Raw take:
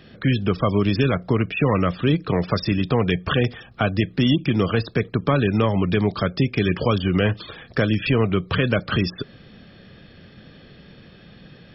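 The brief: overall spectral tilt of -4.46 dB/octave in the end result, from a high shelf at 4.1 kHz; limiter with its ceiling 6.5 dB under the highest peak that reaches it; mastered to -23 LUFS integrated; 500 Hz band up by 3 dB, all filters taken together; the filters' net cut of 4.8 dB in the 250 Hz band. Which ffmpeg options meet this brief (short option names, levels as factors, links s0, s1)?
-af "equalizer=f=250:t=o:g=-8.5,equalizer=f=500:t=o:g=6,highshelf=f=4100:g=8.5,volume=1.06,alimiter=limit=0.282:level=0:latency=1"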